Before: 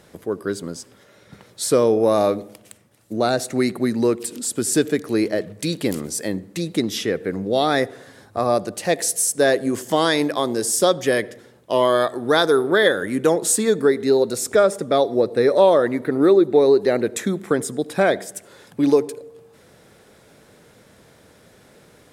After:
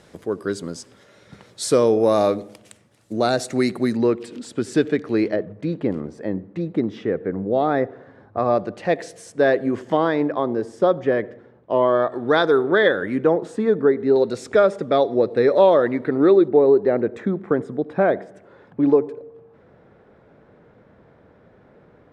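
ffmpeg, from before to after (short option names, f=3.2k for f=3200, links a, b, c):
-af "asetnsamples=n=441:p=0,asendcmd='3.97 lowpass f 3100;5.36 lowpass f 1300;8.38 lowpass f 2300;9.97 lowpass f 1400;12.12 lowpass f 2800;13.24 lowpass f 1500;14.16 lowpass f 3400;16.48 lowpass f 1400',lowpass=8.3k"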